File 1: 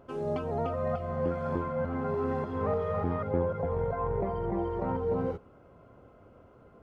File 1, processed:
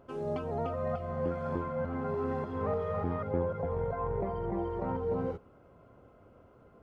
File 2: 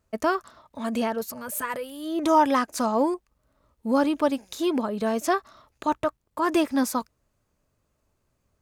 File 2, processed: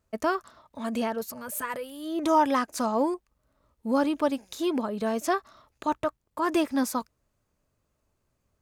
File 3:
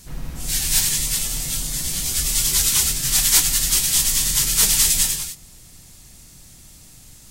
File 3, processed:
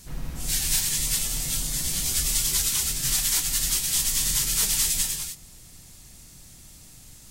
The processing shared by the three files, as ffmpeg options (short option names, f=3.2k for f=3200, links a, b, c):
-af "alimiter=limit=-9.5dB:level=0:latency=1:release=343,volume=-2.5dB"